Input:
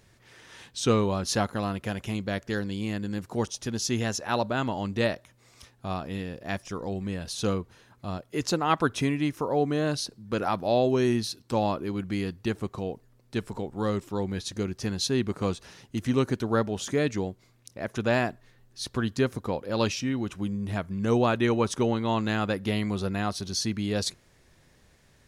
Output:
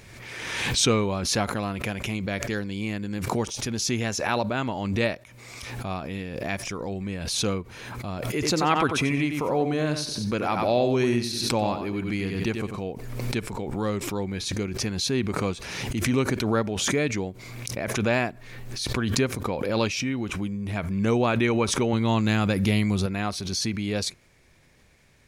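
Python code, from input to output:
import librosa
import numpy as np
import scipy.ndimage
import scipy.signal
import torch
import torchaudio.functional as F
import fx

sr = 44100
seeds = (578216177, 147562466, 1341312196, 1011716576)

y = fx.echo_feedback(x, sr, ms=92, feedback_pct=23, wet_db=-8.0, at=(8.26, 12.82))
y = fx.bass_treble(y, sr, bass_db=7, treble_db=7, at=(21.93, 23.06))
y = fx.peak_eq(y, sr, hz=2300.0, db=9.5, octaves=0.23)
y = fx.pre_swell(y, sr, db_per_s=35.0)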